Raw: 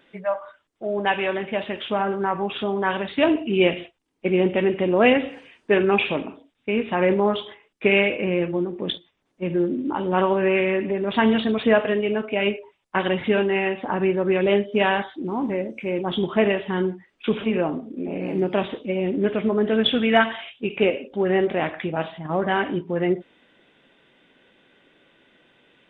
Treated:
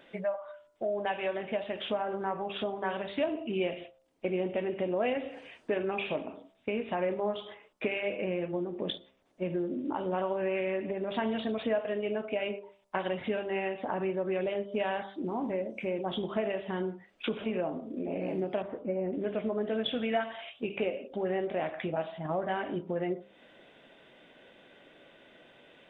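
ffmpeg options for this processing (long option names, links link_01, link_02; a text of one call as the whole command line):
ffmpeg -i in.wav -filter_complex "[0:a]asettb=1/sr,asplit=3[link_01][link_02][link_03];[link_01]atrim=end=18.624[link_04];[link_02]atrim=start=18.62:end=19.13,asetpts=PTS-STARTPTS,afade=type=in:duration=0.004:curve=qsin,afade=type=out:start_time=0.506:duration=0.004:curve=qsin,lowpass=frequency=1800:width=0.5412,lowpass=frequency=1800:width=1.3066[link_05];[link_03]atrim=start=19.126[link_06];[link_04][link_05]acrossfade=duration=0.004:curve1=hsin:curve2=qsin[link_07];[link_07][link_06]acrossfade=duration=0.004:curve1=qsin:curve2=hsin,equalizer=frequency=630:width=2.3:gain=8,acompressor=threshold=-33dB:ratio=3,bandreject=frequency=66.05:width_type=h:width=4,bandreject=frequency=132.1:width_type=h:width=4,bandreject=frequency=198.15:width_type=h:width=4,bandreject=frequency=264.2:width_type=h:width=4,bandreject=frequency=330.25:width_type=h:width=4,bandreject=frequency=396.3:width_type=h:width=4,bandreject=frequency=462.35:width_type=h:width=4,bandreject=frequency=528.4:width_type=h:width=4,bandreject=frequency=594.45:width_type=h:width=4,bandreject=frequency=660.5:width_type=h:width=4,bandreject=frequency=726.55:width_type=h:width=4,bandreject=frequency=792.6:width_type=h:width=4,bandreject=frequency=858.65:width_type=h:width=4,bandreject=frequency=924.7:width_type=h:width=4,bandreject=frequency=990.75:width_type=h:width=4,bandreject=frequency=1056.8:width_type=h:width=4,bandreject=frequency=1122.85:width_type=h:width=4,bandreject=frequency=1188.9:width_type=h:width=4,bandreject=frequency=1254.95:width_type=h:width=4,bandreject=frequency=1321:width_type=h:width=4,bandreject=frequency=1387.05:width_type=h:width=4,bandreject=frequency=1453.1:width_type=h:width=4" out.wav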